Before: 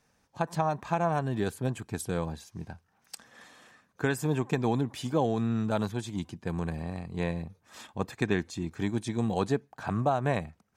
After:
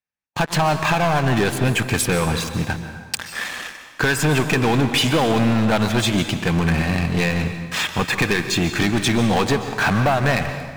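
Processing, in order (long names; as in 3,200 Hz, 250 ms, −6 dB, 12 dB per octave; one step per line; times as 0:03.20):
noise gate −56 dBFS, range −20 dB
parametric band 2,400 Hz +12 dB 1.7 octaves
downward compressor, threshold −28 dBFS, peak gain reduction 10 dB
leveller curve on the samples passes 5
dense smooth reverb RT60 1.5 s, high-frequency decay 0.8×, pre-delay 115 ms, DRR 8 dB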